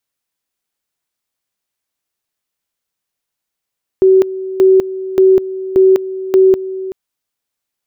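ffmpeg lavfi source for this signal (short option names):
-f lavfi -i "aevalsrc='pow(10,(-4.5-15*gte(mod(t,0.58),0.2))/20)*sin(2*PI*379*t)':d=2.9:s=44100"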